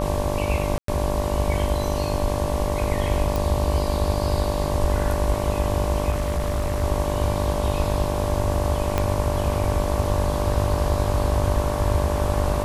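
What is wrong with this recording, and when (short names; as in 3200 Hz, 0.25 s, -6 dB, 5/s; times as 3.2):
buzz 50 Hz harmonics 23 -27 dBFS
tone 590 Hz -28 dBFS
0.78–0.88 gap 0.103 s
3.36 pop
6.1–6.84 clipped -19 dBFS
8.98 pop -8 dBFS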